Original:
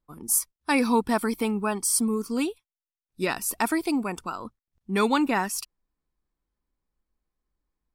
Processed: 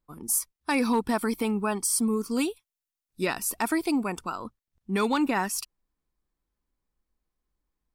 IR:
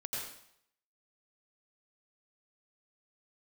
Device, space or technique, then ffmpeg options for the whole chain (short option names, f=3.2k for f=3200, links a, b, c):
clipper into limiter: -filter_complex "[0:a]asettb=1/sr,asplit=3[a][b][c];[a]atrim=end=2.314[d];[b]atrim=start=2.31:end=3.21,asetpts=PTS-STARTPTS,afade=t=in:d=0.004:c=qsin,afade=t=out:st=0.896:d=0.004:c=qsin,highshelf=f=4.9k:g=6[e];[c]atrim=start=3.206[f];[d][e]acrossfade=d=0.004:c1=hsin:c2=qsin[g];[g][f]acrossfade=d=0.004:c1=qsin:c2=hsin,asoftclip=type=hard:threshold=-13dB,alimiter=limit=-16dB:level=0:latency=1:release=81"